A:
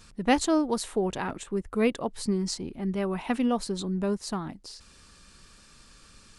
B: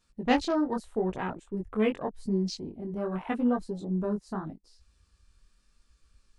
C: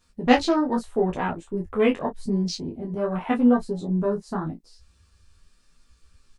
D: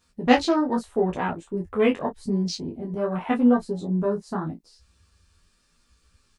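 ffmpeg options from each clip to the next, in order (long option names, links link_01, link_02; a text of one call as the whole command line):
ffmpeg -i in.wav -af "flanger=delay=16:depth=7.6:speed=0.84,afwtdn=0.01,volume=1dB" out.wav
ffmpeg -i in.wav -af "aecho=1:1:12|30:0.631|0.224,volume=5dB" out.wav
ffmpeg -i in.wav -af "highpass=frequency=55:poles=1" out.wav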